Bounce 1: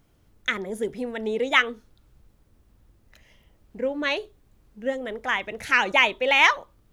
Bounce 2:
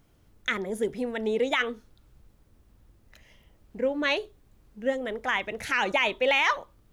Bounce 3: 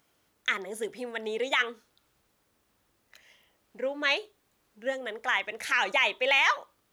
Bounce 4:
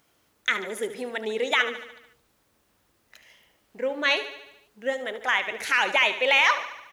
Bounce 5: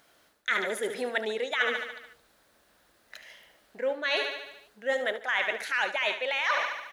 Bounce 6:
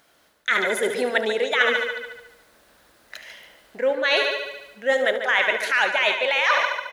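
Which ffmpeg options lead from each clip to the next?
ffmpeg -i in.wav -af "alimiter=limit=-14dB:level=0:latency=1:release=15" out.wav
ffmpeg -i in.wav -af "highpass=frequency=910:poles=1,volume=1.5dB" out.wav
ffmpeg -i in.wav -af "aecho=1:1:73|146|219|292|365|438|511:0.237|0.14|0.0825|0.0487|0.0287|0.017|0.01,volume=3.5dB" out.wav
ffmpeg -i in.wav -af "areverse,acompressor=threshold=-29dB:ratio=16,areverse,equalizer=frequency=100:width_type=o:width=0.67:gain=-7,equalizer=frequency=630:width_type=o:width=0.67:gain=7,equalizer=frequency=1600:width_type=o:width=0.67:gain=8,equalizer=frequency=4000:width_type=o:width=0.67:gain=6,equalizer=frequency=10000:width_type=o:width=0.67:gain=3" out.wav
ffmpeg -i in.wav -filter_complex "[0:a]dynaudnorm=framelen=180:gausssize=5:maxgain=5dB,asplit=2[link_01][link_02];[link_02]adelay=144,lowpass=frequency=4500:poles=1,volume=-9dB,asplit=2[link_03][link_04];[link_04]adelay=144,lowpass=frequency=4500:poles=1,volume=0.37,asplit=2[link_05][link_06];[link_06]adelay=144,lowpass=frequency=4500:poles=1,volume=0.37,asplit=2[link_07][link_08];[link_08]adelay=144,lowpass=frequency=4500:poles=1,volume=0.37[link_09];[link_03][link_05][link_07][link_09]amix=inputs=4:normalize=0[link_10];[link_01][link_10]amix=inputs=2:normalize=0,volume=2.5dB" out.wav

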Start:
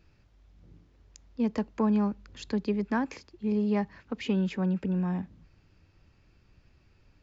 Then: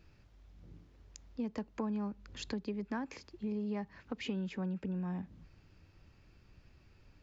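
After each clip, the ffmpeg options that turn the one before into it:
ffmpeg -i in.wav -af "acompressor=threshold=-38dB:ratio=3" out.wav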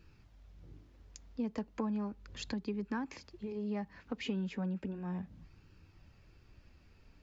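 ffmpeg -i in.wav -af "flanger=delay=0.7:depth=3.8:regen=-58:speed=0.35:shape=sinusoidal,volume=4.5dB" out.wav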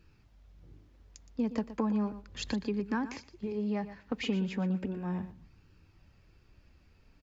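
ffmpeg -i in.wav -af "aecho=1:1:119|238|357:0.211|0.0465|0.0102,agate=range=-6dB:threshold=-48dB:ratio=16:detection=peak,volume=5dB" out.wav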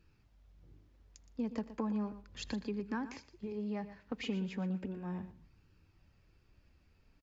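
ffmpeg -i in.wav -af "aecho=1:1:80|160|240:0.0668|0.0307|0.0141,volume=-5.5dB" out.wav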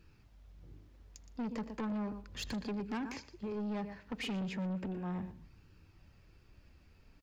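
ffmpeg -i in.wav -af "asoftclip=type=tanh:threshold=-39.5dB,volume=5.5dB" out.wav

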